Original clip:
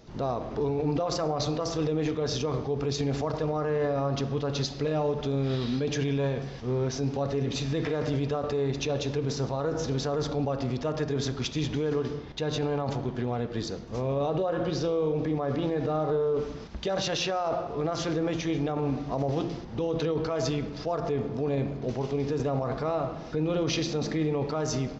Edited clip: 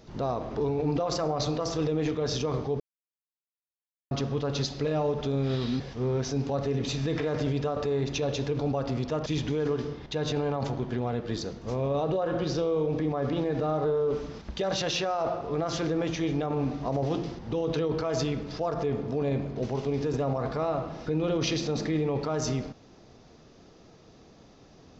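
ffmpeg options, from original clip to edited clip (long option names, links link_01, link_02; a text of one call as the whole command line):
ffmpeg -i in.wav -filter_complex "[0:a]asplit=6[link_01][link_02][link_03][link_04][link_05][link_06];[link_01]atrim=end=2.8,asetpts=PTS-STARTPTS,afade=type=out:start_time=2.796:duration=0.004:curve=hsin[link_07];[link_02]atrim=start=2.8:end=4.11,asetpts=PTS-STARTPTS,volume=0[link_08];[link_03]atrim=start=4.11:end=5.802,asetpts=PTS-STARTPTS,afade=type=in:duration=0.004:curve=hsin[link_09];[link_04]atrim=start=6.468:end=9.262[link_10];[link_05]atrim=start=10.318:end=10.992[link_11];[link_06]atrim=start=11.518[link_12];[link_07][link_08][link_09]concat=n=3:v=0:a=1[link_13];[link_13][link_10]acrossfade=duration=0.004:curve1=hsin:curve2=hsin[link_14];[link_14][link_11]acrossfade=duration=0.004:curve1=hsin:curve2=hsin[link_15];[link_15][link_12]acrossfade=duration=0.004:curve1=hsin:curve2=hsin" out.wav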